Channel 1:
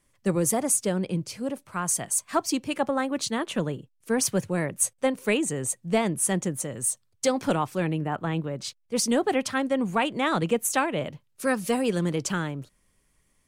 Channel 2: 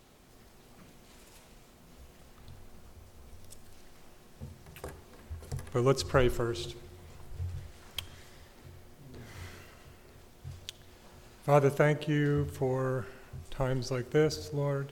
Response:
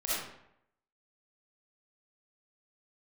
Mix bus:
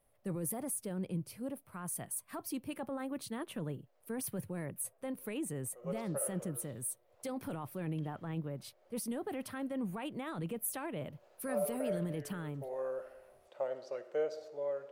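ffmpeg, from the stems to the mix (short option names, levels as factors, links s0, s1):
-filter_complex "[0:a]alimiter=limit=0.0891:level=0:latency=1:release=10,aexciter=amount=13.4:drive=5.3:freq=9800,volume=0.266,asplit=2[s0][s1];[1:a]highpass=f=570:t=q:w=4.9,volume=0.211,afade=t=in:st=5.66:d=0.25:silence=0.334965,asplit=2[s2][s3];[s3]volume=0.119[s4];[s1]apad=whole_len=657851[s5];[s2][s5]sidechaincompress=threshold=0.00251:ratio=8:attack=26:release=205[s6];[2:a]atrim=start_sample=2205[s7];[s4][s7]afir=irnorm=-1:irlink=0[s8];[s0][s6][s8]amix=inputs=3:normalize=0,lowpass=f=2900:p=1,lowshelf=f=200:g=6"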